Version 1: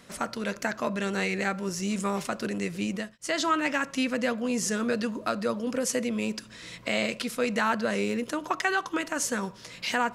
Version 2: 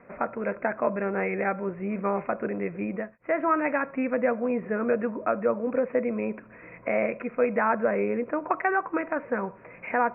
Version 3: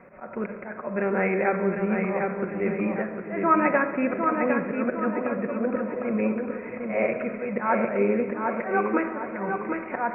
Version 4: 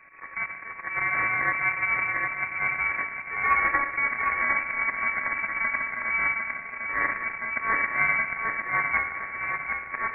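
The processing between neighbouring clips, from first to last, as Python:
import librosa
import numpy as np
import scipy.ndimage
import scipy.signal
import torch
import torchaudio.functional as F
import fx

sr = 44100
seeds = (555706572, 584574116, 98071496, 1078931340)

y1 = scipy.signal.sosfilt(scipy.signal.cheby1(8, 1.0, 2500.0, 'lowpass', fs=sr, output='sos'), x)
y1 = fx.peak_eq(y1, sr, hz=620.0, db=9.0, octaves=2.0)
y1 = y1 * 10.0 ** (-3.0 / 20.0)
y2 = fx.auto_swell(y1, sr, attack_ms=169.0)
y2 = fx.echo_feedback(y2, sr, ms=754, feedback_pct=40, wet_db=-5)
y2 = fx.room_shoebox(y2, sr, seeds[0], volume_m3=2700.0, walls='mixed', distance_m=1.0)
y2 = y2 * 10.0 ** (2.5 / 20.0)
y3 = np.r_[np.sort(y2[:len(y2) // 32 * 32].reshape(-1, 32), axis=1).ravel(), y2[len(y2) // 32 * 32:]]
y3 = fx.air_absorb(y3, sr, metres=260.0)
y3 = fx.freq_invert(y3, sr, carrier_hz=2500)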